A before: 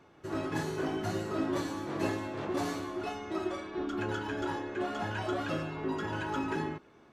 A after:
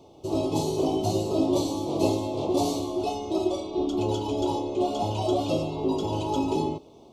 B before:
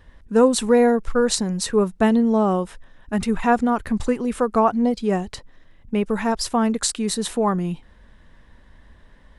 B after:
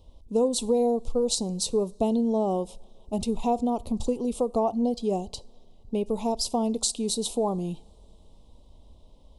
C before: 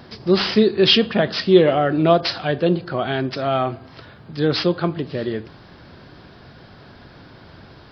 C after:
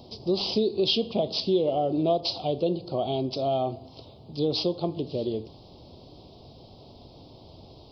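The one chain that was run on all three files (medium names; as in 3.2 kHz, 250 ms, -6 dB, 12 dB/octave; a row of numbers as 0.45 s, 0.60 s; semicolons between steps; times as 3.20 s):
Chebyshev band-stop 760–3600 Hz, order 2; peaking EQ 180 Hz -4.5 dB 1 oct; compression 2.5:1, threshold -21 dBFS; two-slope reverb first 0.41 s, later 4.4 s, from -22 dB, DRR 20 dB; normalise loudness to -27 LUFS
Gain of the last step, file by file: +10.5 dB, -1.5 dB, -2.0 dB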